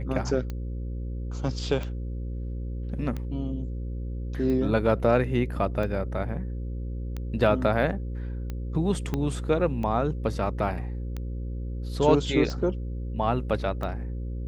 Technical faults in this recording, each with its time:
buzz 60 Hz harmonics 9 -32 dBFS
tick 45 rpm -21 dBFS
9.14 pop -15 dBFS

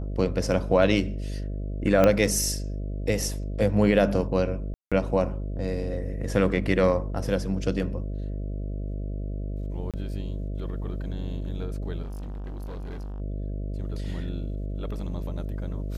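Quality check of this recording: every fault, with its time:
buzz 50 Hz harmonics 13 -31 dBFS
2.04 pop -8 dBFS
4.74–4.92 gap 0.176 s
9.91–9.94 gap 27 ms
12.02–13.21 clipped -32.5 dBFS

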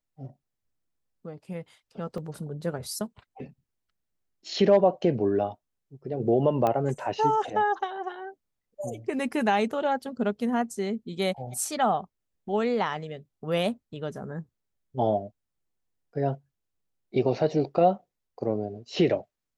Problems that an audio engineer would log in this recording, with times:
2.18 gap 2.6 ms
6.67 pop -14 dBFS

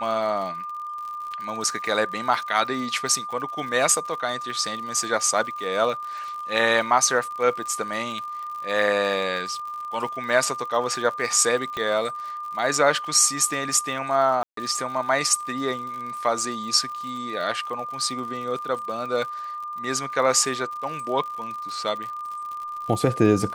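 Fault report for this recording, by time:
crackle 73/s -33 dBFS
tone 1200 Hz -30 dBFS
11.77 pop -16 dBFS
14.43–14.57 gap 0.143 s

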